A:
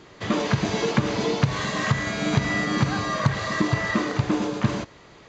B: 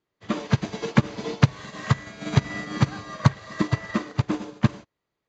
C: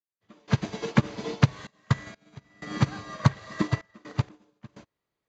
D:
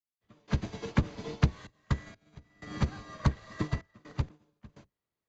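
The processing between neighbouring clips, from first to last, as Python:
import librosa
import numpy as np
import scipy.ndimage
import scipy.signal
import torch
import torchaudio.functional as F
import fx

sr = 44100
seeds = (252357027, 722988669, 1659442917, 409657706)

y1 = fx.upward_expand(x, sr, threshold_db=-41.0, expansion=2.5)
y1 = y1 * librosa.db_to_amplitude(4.5)
y2 = fx.step_gate(y1, sr, bpm=63, pattern='..xxxxx.x', floor_db=-24.0, edge_ms=4.5)
y2 = y2 * librosa.db_to_amplitude(-2.5)
y3 = fx.octave_divider(y2, sr, octaves=1, level_db=-1.0)
y3 = y3 * librosa.db_to_amplitude(-7.0)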